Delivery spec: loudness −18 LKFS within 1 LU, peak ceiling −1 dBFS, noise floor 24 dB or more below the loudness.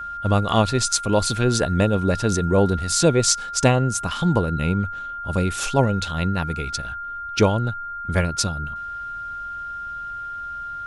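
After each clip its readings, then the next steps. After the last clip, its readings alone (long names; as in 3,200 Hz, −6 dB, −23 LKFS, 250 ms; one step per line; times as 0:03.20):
interfering tone 1,400 Hz; level of the tone −29 dBFS; integrated loudness −22.0 LKFS; sample peak −2.0 dBFS; target loudness −18.0 LKFS
→ notch filter 1,400 Hz, Q 30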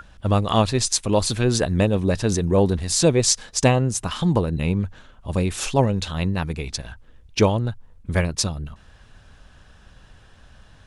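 interfering tone none found; integrated loudness −21.5 LKFS; sample peak −2.5 dBFS; target loudness −18.0 LKFS
→ level +3.5 dB
brickwall limiter −1 dBFS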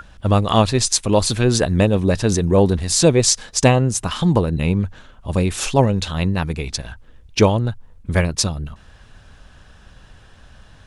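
integrated loudness −18.0 LKFS; sample peak −1.0 dBFS; background noise floor −47 dBFS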